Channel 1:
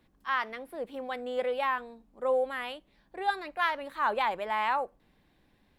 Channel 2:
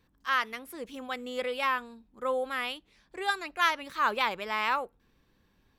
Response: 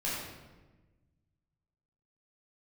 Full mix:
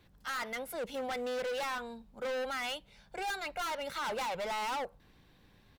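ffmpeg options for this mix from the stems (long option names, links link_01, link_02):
-filter_complex "[0:a]equalizer=frequency=125:width_type=o:width=1:gain=7,equalizer=frequency=250:width_type=o:width=1:gain=-5,equalizer=frequency=4000:width_type=o:width=1:gain=5,volume=0dB[link_01];[1:a]acompressor=threshold=-31dB:ratio=6,adelay=1.4,volume=2dB[link_02];[link_01][link_02]amix=inputs=2:normalize=0,asoftclip=type=hard:threshold=-33.5dB"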